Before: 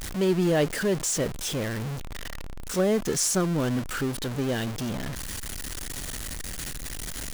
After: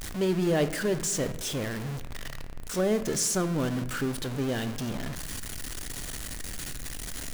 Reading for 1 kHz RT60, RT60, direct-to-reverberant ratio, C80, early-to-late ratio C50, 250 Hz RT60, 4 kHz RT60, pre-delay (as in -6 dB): 1.0 s, 1.1 s, 10.5 dB, 15.0 dB, 13.5 dB, 1.6 s, 0.90 s, 3 ms